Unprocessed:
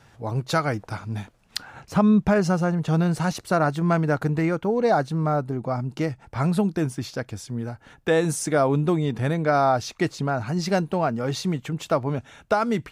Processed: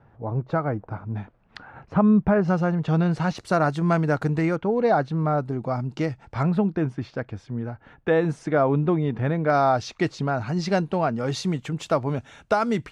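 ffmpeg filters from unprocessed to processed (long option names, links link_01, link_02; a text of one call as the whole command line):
ffmpeg -i in.wav -af "asetnsamples=nb_out_samples=441:pad=0,asendcmd='1.15 lowpass f 1700;2.48 lowpass f 3900;3.38 lowpass f 8000;4.56 lowpass f 3500;5.38 lowpass f 6000;6.43 lowpass f 2300;9.5 lowpass f 5500;11.19 lowpass f 9000',lowpass=1100" out.wav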